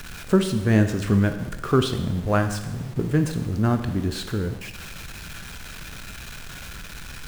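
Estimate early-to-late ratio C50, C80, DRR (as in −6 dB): 9.5 dB, 11.5 dB, 7.0 dB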